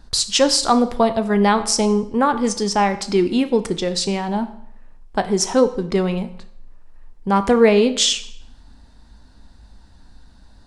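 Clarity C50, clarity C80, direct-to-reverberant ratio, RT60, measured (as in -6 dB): 14.0 dB, 17.0 dB, 10.0 dB, 0.70 s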